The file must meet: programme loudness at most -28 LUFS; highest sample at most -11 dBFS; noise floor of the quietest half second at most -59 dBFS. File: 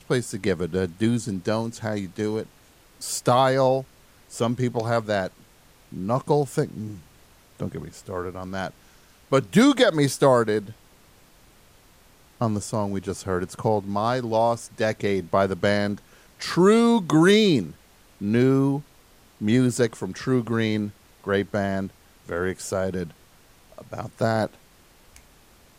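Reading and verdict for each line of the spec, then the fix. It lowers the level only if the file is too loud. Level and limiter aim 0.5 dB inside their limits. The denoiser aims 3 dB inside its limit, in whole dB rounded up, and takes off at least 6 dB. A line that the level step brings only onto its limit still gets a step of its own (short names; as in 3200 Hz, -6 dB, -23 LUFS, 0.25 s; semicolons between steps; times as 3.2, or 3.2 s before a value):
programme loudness -23.5 LUFS: fail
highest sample -6.5 dBFS: fail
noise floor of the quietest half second -54 dBFS: fail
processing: denoiser 6 dB, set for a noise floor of -54 dBFS; gain -5 dB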